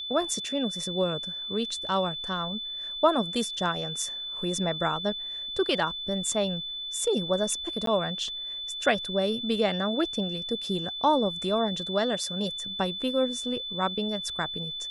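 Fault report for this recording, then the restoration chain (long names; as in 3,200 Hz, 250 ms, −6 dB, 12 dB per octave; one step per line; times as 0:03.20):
whistle 3,500 Hz −33 dBFS
0:07.86–0:07.87: drop-out 13 ms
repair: notch filter 3,500 Hz, Q 30
repair the gap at 0:07.86, 13 ms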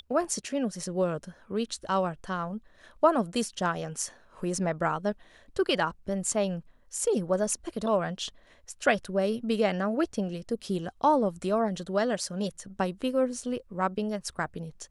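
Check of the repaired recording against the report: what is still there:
none of them is left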